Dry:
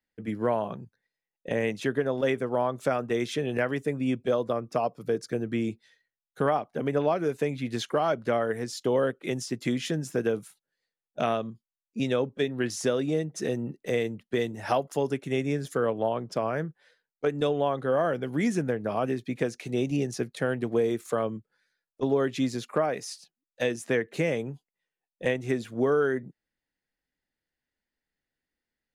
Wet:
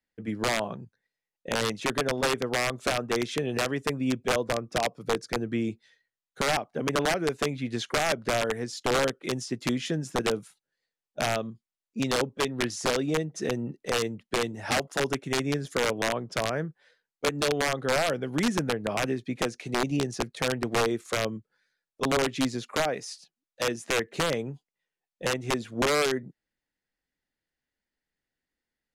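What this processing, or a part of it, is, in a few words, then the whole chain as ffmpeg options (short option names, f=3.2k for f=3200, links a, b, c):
overflowing digital effects unit: -af "aeval=exprs='(mod(7.94*val(0)+1,2)-1)/7.94':c=same,lowpass=9.2k"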